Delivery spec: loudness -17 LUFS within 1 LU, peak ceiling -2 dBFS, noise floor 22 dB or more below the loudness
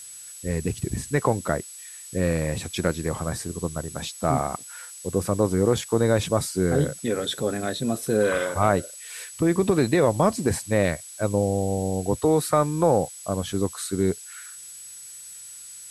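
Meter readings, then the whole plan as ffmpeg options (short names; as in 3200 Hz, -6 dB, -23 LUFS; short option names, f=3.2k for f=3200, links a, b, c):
steady tone 7900 Hz; tone level -41 dBFS; noise floor -42 dBFS; noise floor target -47 dBFS; loudness -24.5 LUFS; peak -5.0 dBFS; loudness target -17.0 LUFS
-> -af "bandreject=f=7.9k:w=30"
-af "afftdn=nr=6:nf=-42"
-af "volume=7.5dB,alimiter=limit=-2dB:level=0:latency=1"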